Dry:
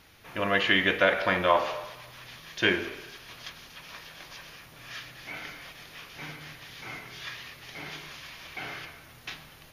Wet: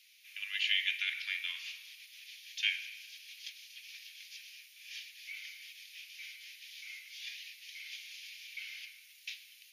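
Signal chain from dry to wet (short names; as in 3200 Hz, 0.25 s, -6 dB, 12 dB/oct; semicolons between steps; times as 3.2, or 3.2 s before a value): elliptic high-pass 2300 Hz, stop band 80 dB; gain -2 dB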